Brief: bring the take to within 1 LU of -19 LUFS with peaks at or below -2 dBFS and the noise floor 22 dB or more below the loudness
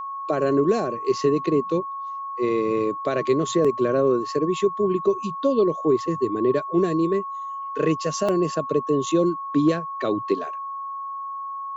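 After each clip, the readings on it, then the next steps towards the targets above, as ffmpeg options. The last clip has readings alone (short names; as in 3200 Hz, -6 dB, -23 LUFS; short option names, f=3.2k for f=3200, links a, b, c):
steady tone 1100 Hz; tone level -29 dBFS; loudness -23.5 LUFS; peak -9.0 dBFS; loudness target -19.0 LUFS
-> -af "bandreject=f=1.1k:w=30"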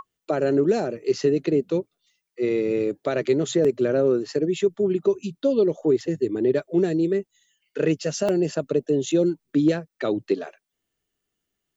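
steady tone none; loudness -23.5 LUFS; peak -10.0 dBFS; loudness target -19.0 LUFS
-> -af "volume=4.5dB"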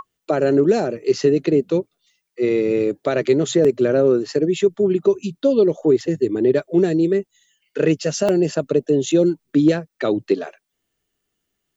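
loudness -19.0 LUFS; peak -5.5 dBFS; noise floor -77 dBFS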